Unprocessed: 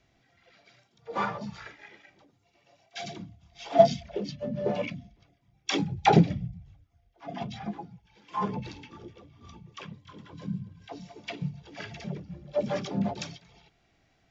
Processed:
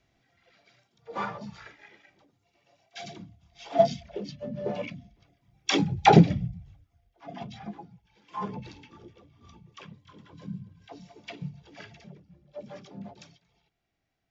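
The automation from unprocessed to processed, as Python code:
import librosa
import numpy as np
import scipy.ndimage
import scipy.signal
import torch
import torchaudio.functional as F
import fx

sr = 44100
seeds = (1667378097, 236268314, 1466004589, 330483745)

y = fx.gain(x, sr, db=fx.line((4.95, -3.0), (5.71, 3.5), (6.4, 3.5), (7.43, -4.0), (11.75, -4.0), (12.15, -13.5)))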